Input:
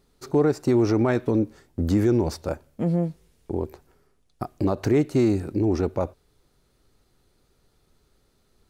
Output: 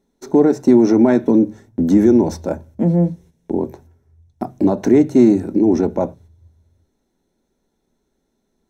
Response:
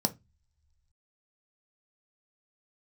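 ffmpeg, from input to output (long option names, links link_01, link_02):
-filter_complex "[0:a]agate=range=-9dB:threshold=-51dB:ratio=16:detection=peak,asplit=2[link_01][link_02];[1:a]atrim=start_sample=2205,asetrate=48510,aresample=44100,lowpass=6000[link_03];[link_02][link_03]afir=irnorm=-1:irlink=0,volume=-6.5dB[link_04];[link_01][link_04]amix=inputs=2:normalize=0"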